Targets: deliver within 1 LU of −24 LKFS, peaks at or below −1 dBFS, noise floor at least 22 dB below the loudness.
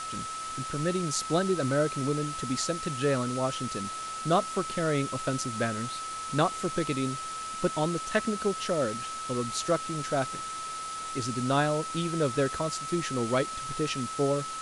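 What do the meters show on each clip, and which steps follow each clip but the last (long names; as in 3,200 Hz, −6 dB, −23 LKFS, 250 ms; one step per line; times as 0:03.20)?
interfering tone 1,300 Hz; level of the tone −35 dBFS; background noise floor −37 dBFS; target noise floor −52 dBFS; integrated loudness −30.0 LKFS; sample peak −11.5 dBFS; target loudness −24.0 LKFS
→ notch filter 1,300 Hz, Q 30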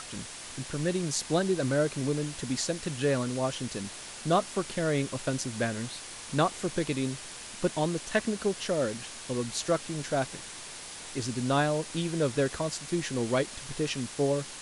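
interfering tone none found; background noise floor −43 dBFS; target noise floor −53 dBFS
→ broadband denoise 10 dB, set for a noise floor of −43 dBFS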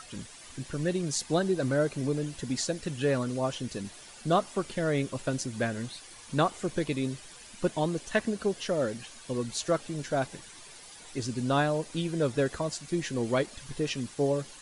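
background noise floor −49 dBFS; target noise floor −53 dBFS
→ broadband denoise 6 dB, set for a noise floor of −49 dBFS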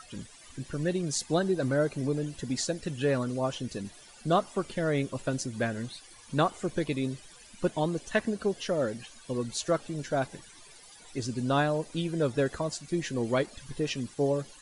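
background noise floor −53 dBFS; integrated loudness −31.0 LKFS; sample peak −12.5 dBFS; target loudness −24.0 LKFS
→ level +7 dB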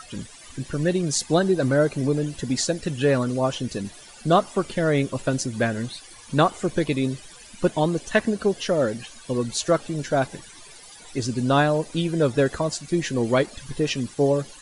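integrated loudness −24.0 LKFS; sample peak −5.5 dBFS; background noise floor −46 dBFS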